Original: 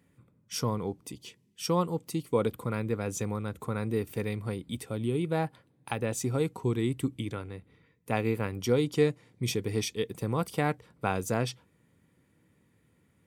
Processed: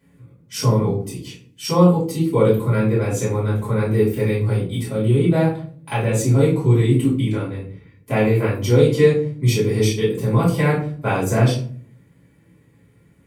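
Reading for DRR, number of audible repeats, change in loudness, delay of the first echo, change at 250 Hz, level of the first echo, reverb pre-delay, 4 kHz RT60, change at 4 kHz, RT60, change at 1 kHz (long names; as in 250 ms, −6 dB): −10.5 dB, no echo audible, +13.0 dB, no echo audible, +12.0 dB, no echo audible, 3 ms, 0.30 s, +8.0 dB, 0.45 s, +8.5 dB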